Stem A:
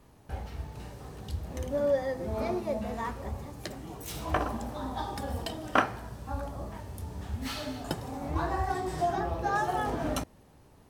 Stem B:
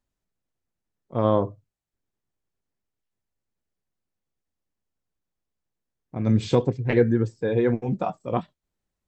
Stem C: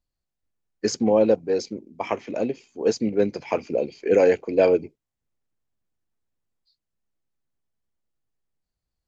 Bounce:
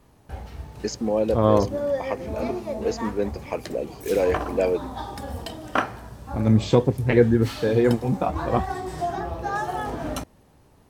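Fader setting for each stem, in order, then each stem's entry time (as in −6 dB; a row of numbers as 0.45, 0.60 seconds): +1.5, +2.5, −4.5 decibels; 0.00, 0.20, 0.00 seconds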